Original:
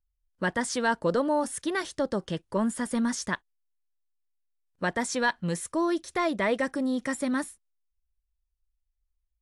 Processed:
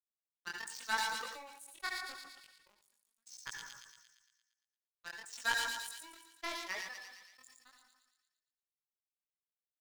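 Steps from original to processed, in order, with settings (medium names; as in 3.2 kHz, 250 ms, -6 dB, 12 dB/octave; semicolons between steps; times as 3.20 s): expander on every frequency bin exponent 2; high-pass 1.3 kHz 12 dB/octave; in parallel at -12 dB: word length cut 6-bit, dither none; on the sum: power-law waveshaper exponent 3; overload inside the chain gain 32 dB; chorus 0.92 Hz, delay 15.5 ms, depth 7.9 ms; speed mistake 25 fps video run at 24 fps; feedback echo behind a high-pass 115 ms, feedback 56%, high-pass 3.2 kHz, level -9 dB; on a send at -14 dB: reverberation RT60 0.75 s, pre-delay 67 ms; on the sum: decay stretcher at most 40 dB/s; trim +11 dB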